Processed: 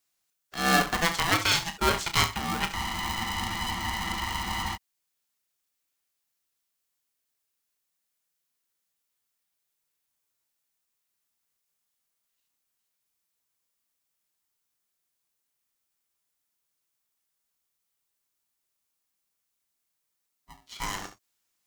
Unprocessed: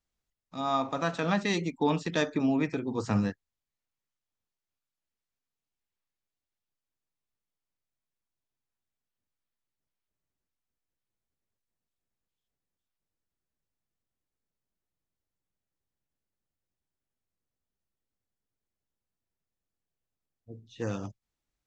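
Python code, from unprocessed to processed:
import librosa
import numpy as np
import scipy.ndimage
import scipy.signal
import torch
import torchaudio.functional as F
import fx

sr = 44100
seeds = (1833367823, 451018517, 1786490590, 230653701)

y = scipy.signal.sosfilt(scipy.signal.butter(2, 590.0, 'highpass', fs=sr, output='sos'), x)
y = fx.high_shelf(y, sr, hz=5300.0, db=10.5)
y = fx.room_early_taps(y, sr, ms=(32, 71), db=(-9.5, -13.0))
y = fx.spec_freeze(y, sr, seeds[0], at_s=2.77, hold_s=1.98)
y = y * np.sign(np.sin(2.0 * np.pi * 500.0 * np.arange(len(y)) / sr))
y = y * 10.0 ** (6.0 / 20.0)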